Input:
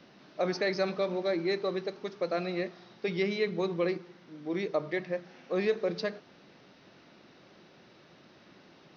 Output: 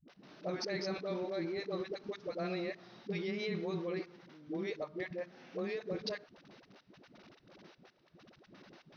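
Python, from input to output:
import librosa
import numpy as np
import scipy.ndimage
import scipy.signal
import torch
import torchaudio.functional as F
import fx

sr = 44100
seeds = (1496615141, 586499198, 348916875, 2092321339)

y = fx.level_steps(x, sr, step_db=19)
y = fx.dispersion(y, sr, late='highs', ms=82.0, hz=360.0)
y = y * librosa.db_to_amplitude(1.0)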